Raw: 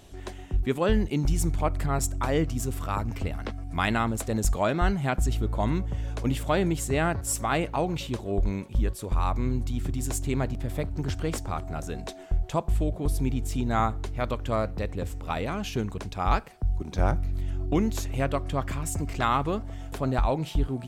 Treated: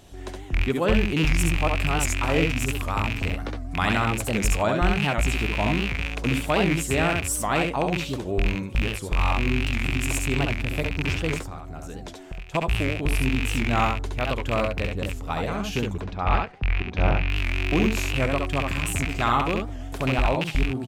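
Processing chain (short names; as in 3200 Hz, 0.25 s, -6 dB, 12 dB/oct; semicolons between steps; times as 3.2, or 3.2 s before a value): rattling part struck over -28 dBFS, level -16 dBFS; 11.34–12.55 compressor 8:1, threshold -35 dBFS, peak gain reduction 14.5 dB; 15.97–17.3 LPF 3100 Hz 12 dB/oct; early reflections 68 ms -4 dB, 79 ms -12 dB; record warp 78 rpm, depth 160 cents; gain +1 dB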